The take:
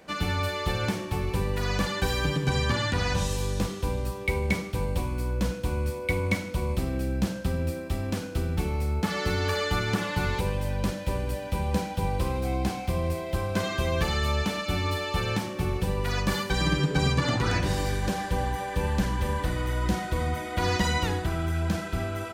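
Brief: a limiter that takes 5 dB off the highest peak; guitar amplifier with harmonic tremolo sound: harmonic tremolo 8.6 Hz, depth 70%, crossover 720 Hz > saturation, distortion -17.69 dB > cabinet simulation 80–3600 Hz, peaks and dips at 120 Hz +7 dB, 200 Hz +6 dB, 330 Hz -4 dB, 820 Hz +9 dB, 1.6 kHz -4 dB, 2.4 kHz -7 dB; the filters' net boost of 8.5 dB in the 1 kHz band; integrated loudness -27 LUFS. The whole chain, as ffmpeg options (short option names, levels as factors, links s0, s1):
-filter_complex "[0:a]equalizer=f=1000:t=o:g=5,alimiter=limit=0.141:level=0:latency=1,acrossover=split=720[s0][s1];[s0]aeval=exprs='val(0)*(1-0.7/2+0.7/2*cos(2*PI*8.6*n/s))':c=same[s2];[s1]aeval=exprs='val(0)*(1-0.7/2-0.7/2*cos(2*PI*8.6*n/s))':c=same[s3];[s2][s3]amix=inputs=2:normalize=0,asoftclip=threshold=0.0668,highpass=80,equalizer=f=120:t=q:w=4:g=7,equalizer=f=200:t=q:w=4:g=6,equalizer=f=330:t=q:w=4:g=-4,equalizer=f=820:t=q:w=4:g=9,equalizer=f=1600:t=q:w=4:g=-4,equalizer=f=2400:t=q:w=4:g=-7,lowpass=f=3600:w=0.5412,lowpass=f=3600:w=1.3066,volume=1.68"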